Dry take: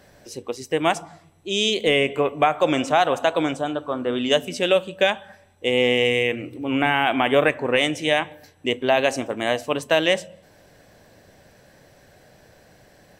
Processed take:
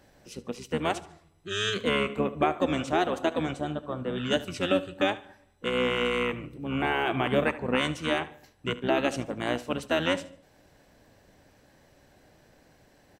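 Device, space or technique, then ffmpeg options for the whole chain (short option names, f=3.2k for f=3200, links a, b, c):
octave pedal: -filter_complex "[0:a]aecho=1:1:74|148|222:0.133|0.0413|0.0128,asplit=2[a][b];[b]asetrate=22050,aresample=44100,atempo=2,volume=-3dB[c];[a][c]amix=inputs=2:normalize=0,volume=-8.5dB"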